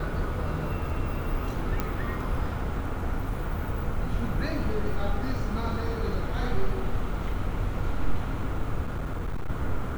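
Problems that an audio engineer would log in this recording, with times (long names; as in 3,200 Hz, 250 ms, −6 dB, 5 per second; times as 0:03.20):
0:01.80: click −13 dBFS
0:08.83–0:09.50: clipping −26.5 dBFS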